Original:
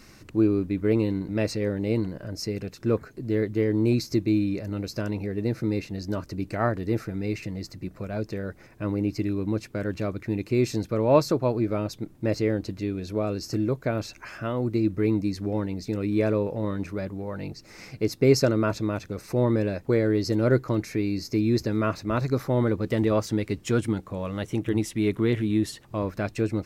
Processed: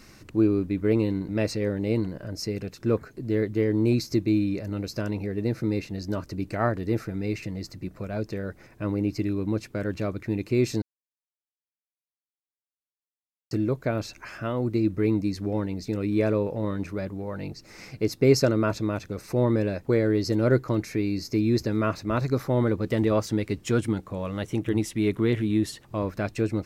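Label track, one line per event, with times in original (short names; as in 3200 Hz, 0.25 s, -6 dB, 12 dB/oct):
10.820000	13.510000	mute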